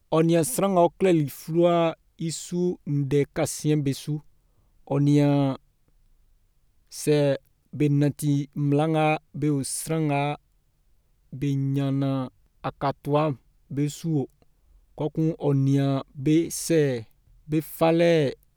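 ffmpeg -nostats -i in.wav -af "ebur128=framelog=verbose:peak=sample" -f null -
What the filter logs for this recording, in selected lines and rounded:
Integrated loudness:
  I:         -24.5 LUFS
  Threshold: -35.4 LUFS
Loudness range:
  LRA:         4.4 LU
  Threshold: -46.1 LUFS
  LRA low:   -28.5 LUFS
  LRA high:  -24.0 LUFS
Sample peak:
  Peak:       -8.2 dBFS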